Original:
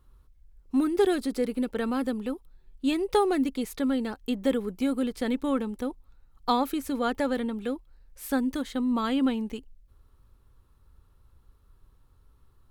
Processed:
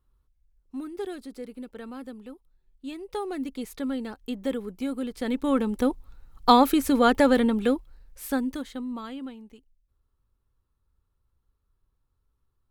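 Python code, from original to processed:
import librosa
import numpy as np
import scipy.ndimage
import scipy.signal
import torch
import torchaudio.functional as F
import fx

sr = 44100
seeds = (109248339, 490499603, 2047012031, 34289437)

y = fx.gain(x, sr, db=fx.line((3.04, -11.0), (3.62, -3.5), (5.06, -3.5), (5.86, 8.0), (7.67, 8.0), (8.65, -3.5), (9.36, -14.5)))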